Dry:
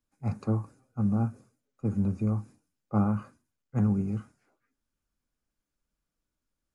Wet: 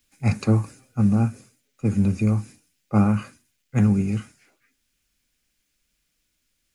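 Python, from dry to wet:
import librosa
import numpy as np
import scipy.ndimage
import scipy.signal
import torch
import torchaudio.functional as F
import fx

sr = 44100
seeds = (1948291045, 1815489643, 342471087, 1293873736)

p1 = fx.high_shelf_res(x, sr, hz=1600.0, db=10.0, q=1.5)
p2 = fx.rider(p1, sr, range_db=10, speed_s=0.5)
p3 = p1 + (p2 * librosa.db_to_amplitude(-1.0))
y = p3 * librosa.db_to_amplitude(2.5)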